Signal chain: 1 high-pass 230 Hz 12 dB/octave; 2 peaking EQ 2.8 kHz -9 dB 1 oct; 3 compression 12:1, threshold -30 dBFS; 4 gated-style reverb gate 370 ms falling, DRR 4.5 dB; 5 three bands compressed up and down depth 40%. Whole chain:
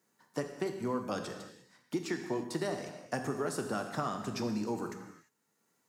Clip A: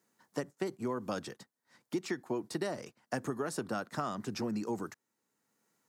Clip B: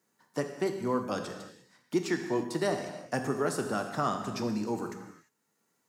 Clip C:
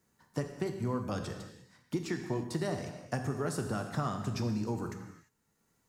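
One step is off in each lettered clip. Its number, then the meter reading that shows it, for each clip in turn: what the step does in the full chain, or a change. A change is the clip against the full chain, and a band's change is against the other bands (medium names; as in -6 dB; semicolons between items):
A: 4, loudness change -1.0 LU; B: 3, mean gain reduction 3.0 dB; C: 1, 125 Hz band +9.0 dB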